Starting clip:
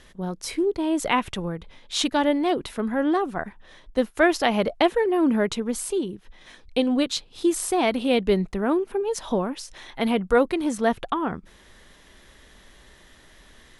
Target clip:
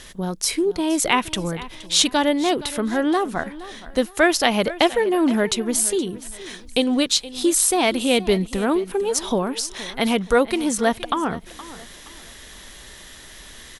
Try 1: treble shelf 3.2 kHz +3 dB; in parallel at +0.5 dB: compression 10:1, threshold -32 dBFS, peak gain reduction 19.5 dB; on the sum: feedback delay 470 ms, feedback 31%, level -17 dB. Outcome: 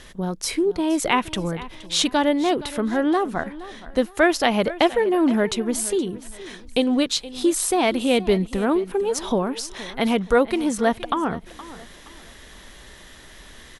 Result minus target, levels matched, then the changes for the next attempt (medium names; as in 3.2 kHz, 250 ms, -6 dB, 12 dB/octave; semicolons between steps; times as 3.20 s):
8 kHz band -4.5 dB
change: treble shelf 3.2 kHz +11 dB